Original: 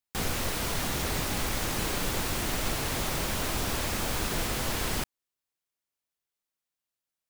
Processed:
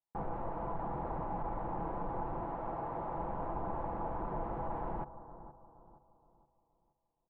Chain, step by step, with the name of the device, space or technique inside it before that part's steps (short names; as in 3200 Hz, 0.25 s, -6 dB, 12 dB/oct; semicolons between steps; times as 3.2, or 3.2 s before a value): comb 6 ms, depth 42%; 2.44–3.18 low shelf 160 Hz -8 dB; analogue delay 0.471 s, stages 4096, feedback 38%, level -15 dB; overdriven synthesiser ladder filter (soft clip -23.5 dBFS, distortion -17 dB; ladder low-pass 1000 Hz, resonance 60%); gain +3.5 dB